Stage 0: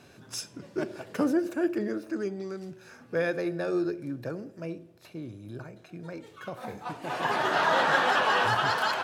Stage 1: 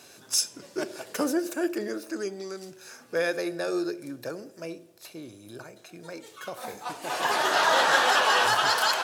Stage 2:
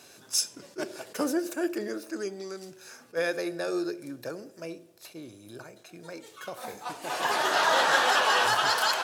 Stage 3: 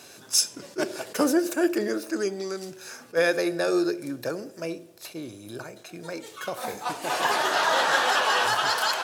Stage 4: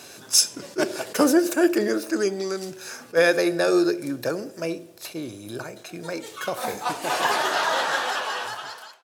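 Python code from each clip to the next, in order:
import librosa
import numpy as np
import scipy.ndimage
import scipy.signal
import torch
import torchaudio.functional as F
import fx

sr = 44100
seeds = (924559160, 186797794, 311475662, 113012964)

y1 = fx.bass_treble(x, sr, bass_db=-12, treble_db=12)
y1 = y1 * librosa.db_to_amplitude(2.0)
y2 = fx.attack_slew(y1, sr, db_per_s=470.0)
y2 = y2 * librosa.db_to_amplitude(-1.5)
y3 = fx.rider(y2, sr, range_db=3, speed_s=0.5)
y3 = y3 * librosa.db_to_amplitude(3.5)
y4 = fx.fade_out_tail(y3, sr, length_s=2.27)
y4 = y4 * librosa.db_to_amplitude(4.0)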